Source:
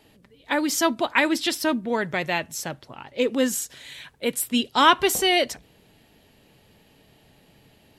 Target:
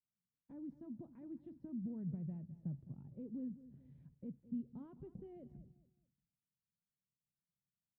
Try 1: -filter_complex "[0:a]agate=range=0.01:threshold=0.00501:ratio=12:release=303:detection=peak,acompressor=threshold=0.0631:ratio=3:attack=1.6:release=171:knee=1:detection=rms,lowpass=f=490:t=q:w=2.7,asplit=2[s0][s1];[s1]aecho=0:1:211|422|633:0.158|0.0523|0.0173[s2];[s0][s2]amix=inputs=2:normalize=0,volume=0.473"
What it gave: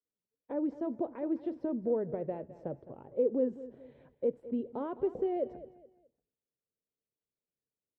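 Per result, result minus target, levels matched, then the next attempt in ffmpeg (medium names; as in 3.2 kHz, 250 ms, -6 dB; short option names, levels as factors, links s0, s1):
125 Hz band -16.0 dB; compression: peak gain reduction -4 dB
-filter_complex "[0:a]agate=range=0.01:threshold=0.00501:ratio=12:release=303:detection=peak,acompressor=threshold=0.0631:ratio=3:attack=1.6:release=171:knee=1:detection=rms,lowpass=f=170:t=q:w=2.7,asplit=2[s0][s1];[s1]aecho=0:1:211|422|633:0.158|0.0523|0.0173[s2];[s0][s2]amix=inputs=2:normalize=0,volume=0.473"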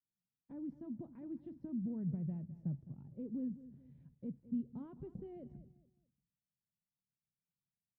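compression: peak gain reduction -4 dB
-filter_complex "[0:a]agate=range=0.01:threshold=0.00501:ratio=12:release=303:detection=peak,acompressor=threshold=0.0316:ratio=3:attack=1.6:release=171:knee=1:detection=rms,lowpass=f=170:t=q:w=2.7,asplit=2[s0][s1];[s1]aecho=0:1:211|422|633:0.158|0.0523|0.0173[s2];[s0][s2]amix=inputs=2:normalize=0,volume=0.473"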